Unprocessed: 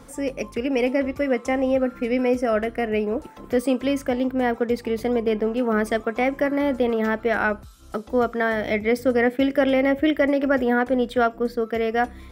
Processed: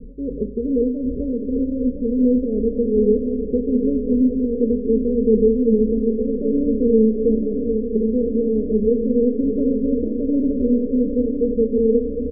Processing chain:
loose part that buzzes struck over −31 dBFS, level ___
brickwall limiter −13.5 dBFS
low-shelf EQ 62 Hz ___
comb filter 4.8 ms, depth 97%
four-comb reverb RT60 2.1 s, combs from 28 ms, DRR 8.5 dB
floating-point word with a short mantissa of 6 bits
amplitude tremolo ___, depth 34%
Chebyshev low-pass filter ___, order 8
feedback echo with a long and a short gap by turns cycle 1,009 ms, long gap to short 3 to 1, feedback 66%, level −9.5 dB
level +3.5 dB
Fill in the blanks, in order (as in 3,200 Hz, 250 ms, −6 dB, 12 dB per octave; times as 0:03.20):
−18 dBFS, +11.5 dB, 2.6 Hz, 530 Hz